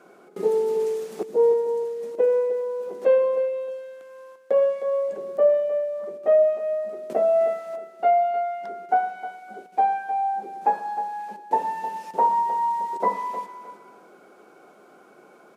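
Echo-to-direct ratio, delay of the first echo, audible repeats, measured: -11.0 dB, 310 ms, 2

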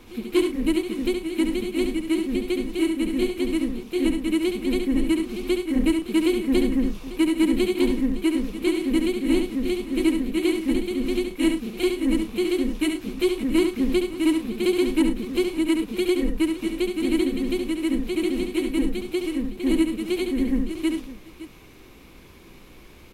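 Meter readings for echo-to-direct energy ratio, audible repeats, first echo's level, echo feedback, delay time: -5.0 dB, 3, -6.0 dB, no regular repeats, 70 ms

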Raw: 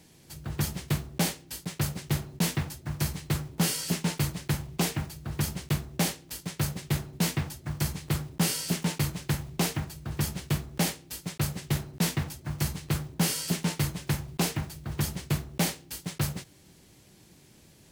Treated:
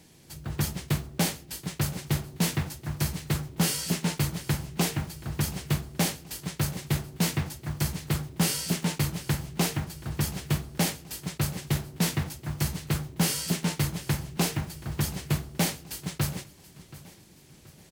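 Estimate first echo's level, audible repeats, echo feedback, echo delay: -18.5 dB, 3, 43%, 728 ms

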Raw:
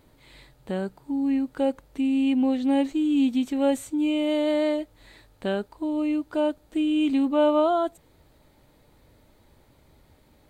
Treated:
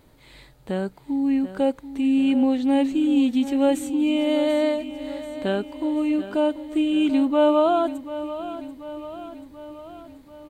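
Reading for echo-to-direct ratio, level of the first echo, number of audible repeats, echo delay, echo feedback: -11.0 dB, -13.0 dB, 5, 736 ms, 58%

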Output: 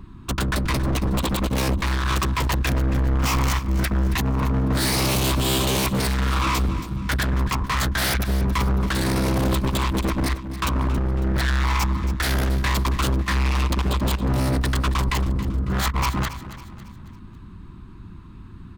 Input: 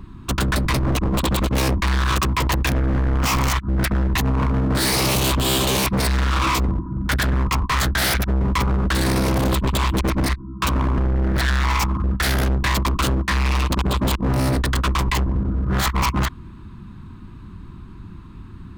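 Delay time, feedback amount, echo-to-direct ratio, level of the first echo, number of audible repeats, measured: 275 ms, 45%, -13.0 dB, -14.0 dB, 4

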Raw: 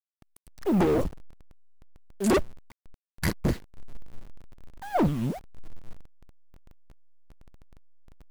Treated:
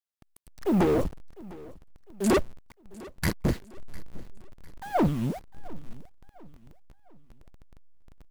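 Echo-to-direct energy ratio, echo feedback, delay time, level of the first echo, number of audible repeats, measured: -20.0 dB, 42%, 703 ms, -21.0 dB, 2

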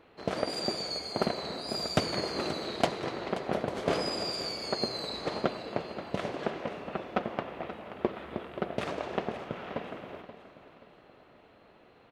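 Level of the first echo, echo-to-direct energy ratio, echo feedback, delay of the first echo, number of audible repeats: -13.0 dB, -12.5 dB, 39%, 529 ms, 3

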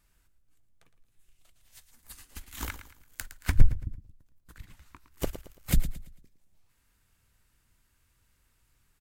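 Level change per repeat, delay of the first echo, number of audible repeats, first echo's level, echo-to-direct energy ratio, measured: -9.0 dB, 112 ms, 3, -12.0 dB, -11.5 dB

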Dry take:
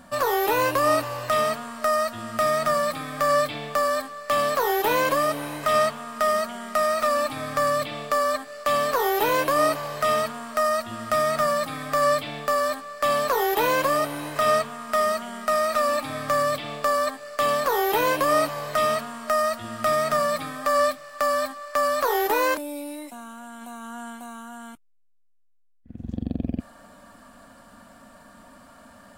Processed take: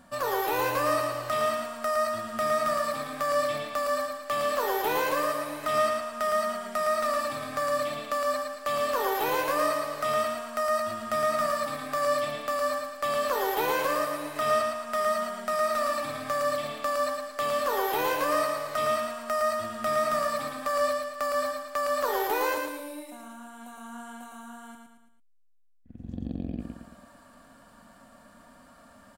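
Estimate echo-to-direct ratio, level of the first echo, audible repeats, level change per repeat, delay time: -3.0 dB, -4.0 dB, 4, -6.5 dB, 112 ms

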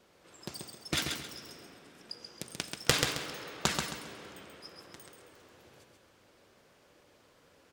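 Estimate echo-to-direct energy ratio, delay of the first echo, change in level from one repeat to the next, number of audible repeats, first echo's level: -4.5 dB, 134 ms, -10.0 dB, 3, -5.0 dB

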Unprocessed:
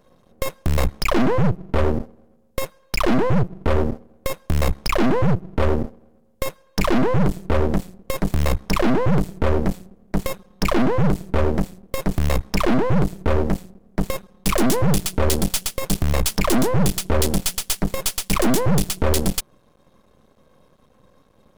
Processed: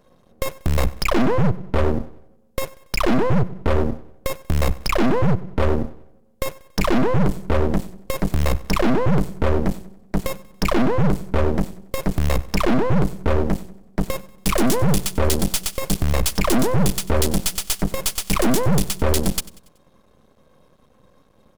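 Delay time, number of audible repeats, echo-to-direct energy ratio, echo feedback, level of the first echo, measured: 94 ms, 3, -19.0 dB, 47%, -20.0 dB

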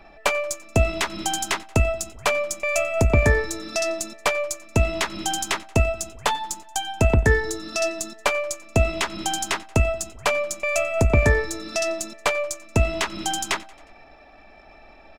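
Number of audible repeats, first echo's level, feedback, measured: 3, -23.0 dB, 59%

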